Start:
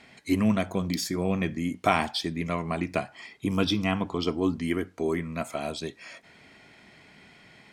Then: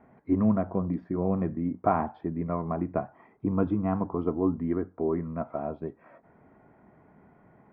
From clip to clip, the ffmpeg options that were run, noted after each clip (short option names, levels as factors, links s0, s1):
-af "lowpass=f=1200:w=0.5412,lowpass=f=1200:w=1.3066"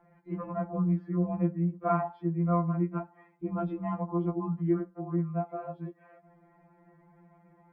-af "afftfilt=real='re*2.83*eq(mod(b,8),0)':imag='im*2.83*eq(mod(b,8),0)':win_size=2048:overlap=0.75"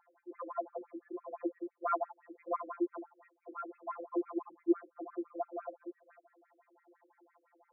-af "afftfilt=real='re*between(b*sr/1024,350*pow(1900/350,0.5+0.5*sin(2*PI*5.9*pts/sr))/1.41,350*pow(1900/350,0.5+0.5*sin(2*PI*5.9*pts/sr))*1.41)':imag='im*between(b*sr/1024,350*pow(1900/350,0.5+0.5*sin(2*PI*5.9*pts/sr))/1.41,350*pow(1900/350,0.5+0.5*sin(2*PI*5.9*pts/sr))*1.41)':win_size=1024:overlap=0.75,volume=1.12"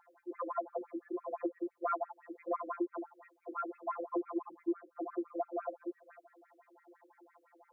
-af "acompressor=threshold=0.0158:ratio=5,volume=1.68"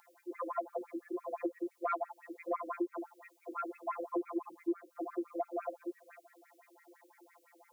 -af "aexciter=amount=4.8:drive=3:freq=2100"